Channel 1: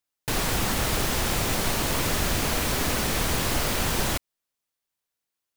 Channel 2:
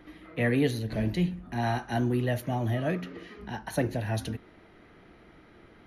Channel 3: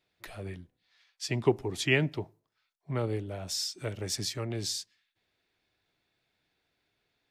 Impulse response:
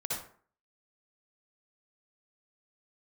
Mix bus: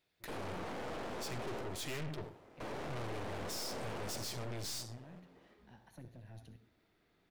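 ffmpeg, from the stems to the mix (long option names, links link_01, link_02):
-filter_complex "[0:a]bandpass=frequency=510:width_type=q:width=0.98:csg=0,volume=-5.5dB,asplit=3[link_01][link_02][link_03];[link_01]atrim=end=1.61,asetpts=PTS-STARTPTS,afade=type=out:start_time=1.606:duration=0.004:curve=hsin[link_04];[link_02]atrim=start=1.61:end=2.6,asetpts=PTS-STARTPTS,volume=0[link_05];[link_03]atrim=start=2.6,asetpts=PTS-STARTPTS,afade=type=in:duration=0.004:curve=hsin[link_06];[link_04][link_05][link_06]concat=n=3:v=0:a=1,asplit=3[link_07][link_08][link_09];[link_08]volume=-6.5dB[link_10];[link_09]volume=-7.5dB[link_11];[1:a]acrossover=split=220[link_12][link_13];[link_13]acompressor=threshold=-41dB:ratio=3[link_14];[link_12][link_14]amix=inputs=2:normalize=0,adelay=2200,volume=-18.5dB,asplit=2[link_15][link_16];[link_16]volume=-11dB[link_17];[2:a]highshelf=frequency=9100:gain=5.5,volume=-0.5dB,asplit=2[link_18][link_19];[link_19]volume=-15.5dB[link_20];[3:a]atrim=start_sample=2205[link_21];[link_10][link_17][link_20]amix=inputs=3:normalize=0[link_22];[link_22][link_21]afir=irnorm=-1:irlink=0[link_23];[link_11]aecho=0:1:341|682|1023|1364|1705|2046|2387:1|0.49|0.24|0.118|0.0576|0.0282|0.0138[link_24];[link_07][link_15][link_18][link_23][link_24]amix=inputs=5:normalize=0,aeval=exprs='(tanh(100*val(0)+0.7)-tanh(0.7))/100':channel_layout=same"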